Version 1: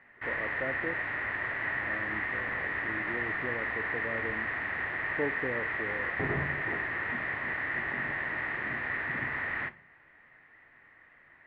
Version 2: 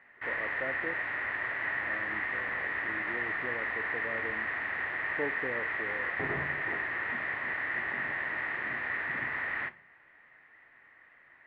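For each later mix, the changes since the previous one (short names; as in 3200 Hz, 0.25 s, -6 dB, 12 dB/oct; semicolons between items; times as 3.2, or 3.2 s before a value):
master: add low shelf 290 Hz -8 dB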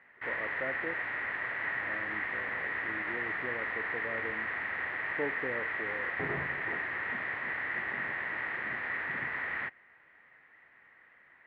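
reverb: off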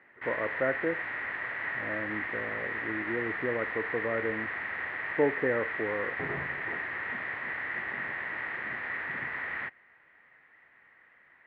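speech +9.5 dB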